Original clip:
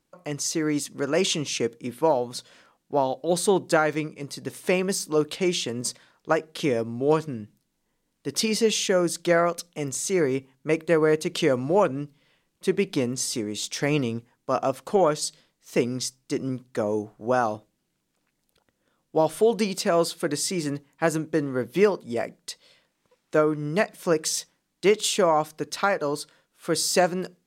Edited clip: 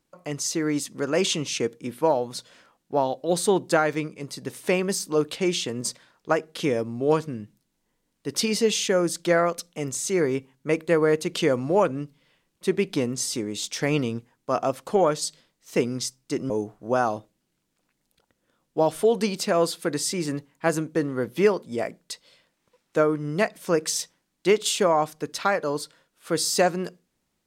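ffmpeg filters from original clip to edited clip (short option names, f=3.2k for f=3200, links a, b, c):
-filter_complex "[0:a]asplit=2[a][b];[a]atrim=end=16.502[c];[b]atrim=start=16.878[d];[c][d]acrossfade=d=0.004:c1=hsin:c2=hsin"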